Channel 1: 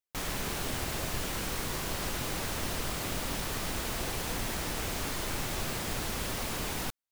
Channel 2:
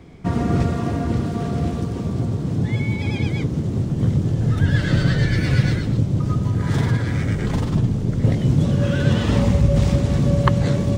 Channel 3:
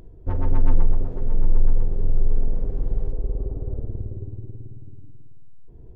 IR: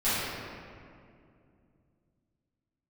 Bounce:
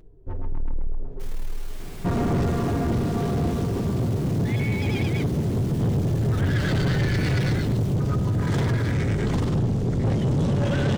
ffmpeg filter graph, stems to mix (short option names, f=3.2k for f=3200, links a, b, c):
-filter_complex "[0:a]asplit=2[a][b];[b]adelay=8.4,afreqshift=-0.67[c];[a][c]amix=inputs=2:normalize=1,adelay=1050,volume=-7.5dB,asplit=2[d][e];[e]volume=-5dB[f];[1:a]adelay=1800,volume=1.5dB[g];[2:a]flanger=delay=6.4:depth=2.6:regen=-38:speed=1:shape=triangular,volume=-3dB,afade=t=out:st=1.15:d=0.53:silence=0.281838[h];[f]aecho=0:1:961|1922|2883|3844|4805:1|0.32|0.102|0.0328|0.0105[i];[d][g][h][i]amix=inputs=4:normalize=0,equalizer=f=400:t=o:w=0.23:g=6,asoftclip=type=tanh:threshold=-18.5dB"